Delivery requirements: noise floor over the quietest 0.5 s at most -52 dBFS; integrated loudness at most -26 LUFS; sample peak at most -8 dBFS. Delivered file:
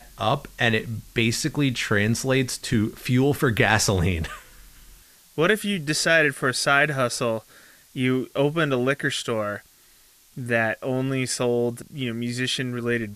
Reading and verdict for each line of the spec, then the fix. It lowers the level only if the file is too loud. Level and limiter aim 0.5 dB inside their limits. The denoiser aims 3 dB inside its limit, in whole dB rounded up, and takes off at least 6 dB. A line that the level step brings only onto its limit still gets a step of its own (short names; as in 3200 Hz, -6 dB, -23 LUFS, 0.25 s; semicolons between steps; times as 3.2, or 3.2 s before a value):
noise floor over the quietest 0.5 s -55 dBFS: OK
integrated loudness -23.0 LUFS: fail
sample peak -3.5 dBFS: fail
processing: gain -3.5 dB; limiter -8.5 dBFS